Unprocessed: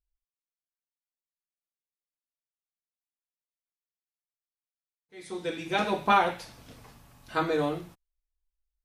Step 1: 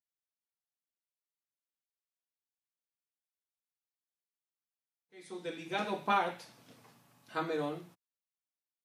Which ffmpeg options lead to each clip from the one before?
-af "highpass=f=130:w=0.5412,highpass=f=130:w=1.3066,volume=-7.5dB"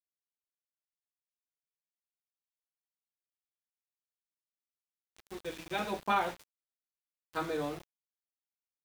-af "aeval=exprs='val(0)+0.00126*(sin(2*PI*60*n/s)+sin(2*PI*2*60*n/s)/2+sin(2*PI*3*60*n/s)/3+sin(2*PI*4*60*n/s)/4+sin(2*PI*5*60*n/s)/5)':c=same,aeval=exprs='val(0)*gte(abs(val(0)),0.00708)':c=same"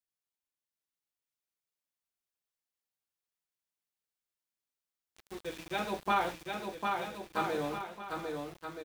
-af "aecho=1:1:750|1275|1642|1900|2080:0.631|0.398|0.251|0.158|0.1"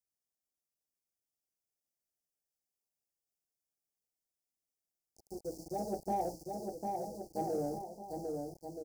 -filter_complex "[0:a]asuperstop=centerf=2000:order=20:qfactor=0.51,asplit=2[a][b];[b]asoftclip=type=tanh:threshold=-34dB,volume=-11dB[c];[a][c]amix=inputs=2:normalize=0,volume=-2dB"

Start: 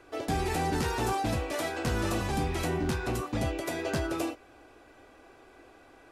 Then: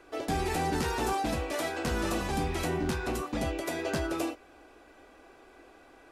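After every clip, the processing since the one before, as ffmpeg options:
-af "equalizer=f=110:w=4.3:g=-13.5"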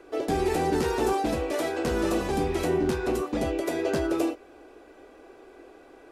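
-af "equalizer=f=410:w=1.2:g=9"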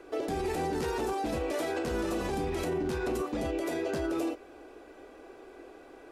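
-af "alimiter=limit=-24dB:level=0:latency=1:release=47"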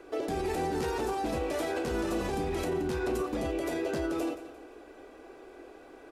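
-af "aecho=1:1:174|348|522:0.2|0.0718|0.0259"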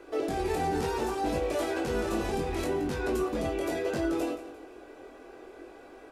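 -af "flanger=delay=20:depth=3.1:speed=0.69,volume=4.5dB"

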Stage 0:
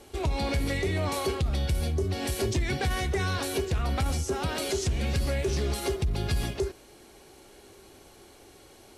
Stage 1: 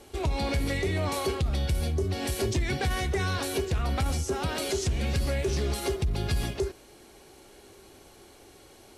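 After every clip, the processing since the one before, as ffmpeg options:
-af anull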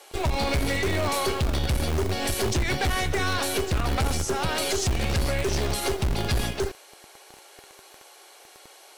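-filter_complex "[0:a]acrossover=split=510[a][b];[a]acrusher=bits=5:dc=4:mix=0:aa=0.000001[c];[c][b]amix=inputs=2:normalize=0,asoftclip=type=hard:threshold=-25.5dB,volume=6dB"

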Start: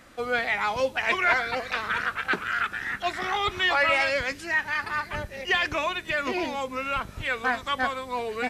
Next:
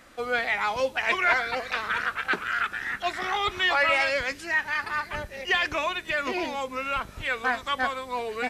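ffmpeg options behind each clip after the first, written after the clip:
-af "equalizer=f=120:w=0.57:g=-4.5"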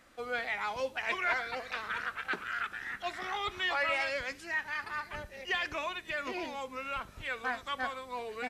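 -af "aecho=1:1:71:0.0794,volume=-8.5dB"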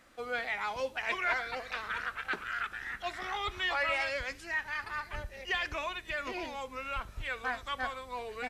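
-af "asubboost=boost=3.5:cutoff=91"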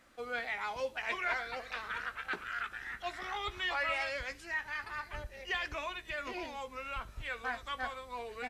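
-filter_complex "[0:a]asplit=2[a][b];[b]adelay=17,volume=-12dB[c];[a][c]amix=inputs=2:normalize=0,volume=-3dB"

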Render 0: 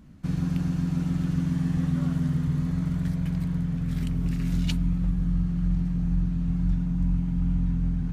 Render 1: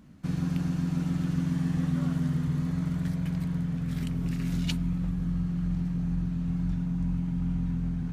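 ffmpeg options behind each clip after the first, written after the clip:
-af "lowshelf=f=81:g=-11"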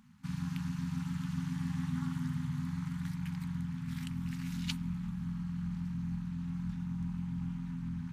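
-af "tremolo=f=260:d=0.857,highpass=f=170:p=1,afftfilt=real='re*(1-between(b*sr/4096,260,790))':imag='im*(1-between(b*sr/4096,260,790))':win_size=4096:overlap=0.75"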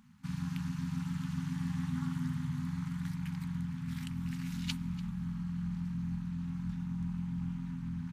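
-af "aecho=1:1:292:0.119"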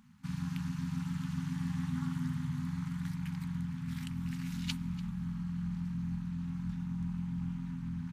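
-af anull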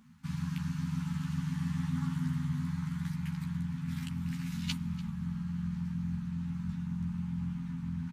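-filter_complex "[0:a]asplit=2[a][b];[b]adelay=13,volume=-4dB[c];[a][c]amix=inputs=2:normalize=0"

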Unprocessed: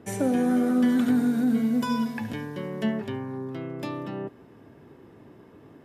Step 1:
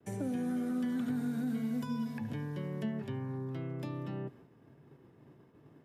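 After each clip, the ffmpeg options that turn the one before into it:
-filter_complex "[0:a]agate=range=-33dB:threshold=-45dB:ratio=3:detection=peak,equalizer=f=140:t=o:w=0.44:g=9,acrossover=split=260|530|1500[a][b][c][d];[a]acompressor=threshold=-28dB:ratio=4[e];[b]acompressor=threshold=-38dB:ratio=4[f];[c]acompressor=threshold=-45dB:ratio=4[g];[d]acompressor=threshold=-48dB:ratio=4[h];[e][f][g][h]amix=inputs=4:normalize=0,volume=-6.5dB"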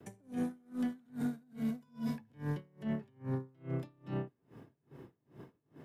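-af "alimiter=level_in=10.5dB:limit=-24dB:level=0:latency=1:release=66,volume=-10.5dB,asoftclip=type=tanh:threshold=-35.5dB,aeval=exprs='val(0)*pow(10,-34*(0.5-0.5*cos(2*PI*2.4*n/s))/20)':c=same,volume=10dB"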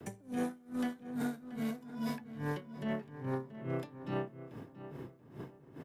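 -filter_complex "[0:a]acrossover=split=360|760|2700[a][b][c][d];[a]acompressor=threshold=-45dB:ratio=6[e];[d]aeval=exprs='clip(val(0),-1,0.00188)':c=same[f];[e][b][c][f]amix=inputs=4:normalize=0,asplit=2[g][h];[h]adelay=681,lowpass=f=2.2k:p=1,volume=-12.5dB,asplit=2[i][j];[j]adelay=681,lowpass=f=2.2k:p=1,volume=0.26,asplit=2[k][l];[l]adelay=681,lowpass=f=2.2k:p=1,volume=0.26[m];[g][i][k][m]amix=inputs=4:normalize=0,volume=6.5dB"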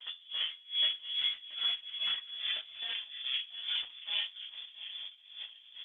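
-af "flanger=delay=16.5:depth=4.1:speed=0.5,lowpass=f=3.1k:t=q:w=0.5098,lowpass=f=3.1k:t=q:w=0.6013,lowpass=f=3.1k:t=q:w=0.9,lowpass=f=3.1k:t=q:w=2.563,afreqshift=-3600,volume=5dB" -ar 48000 -c:a libopus -b:a 10k

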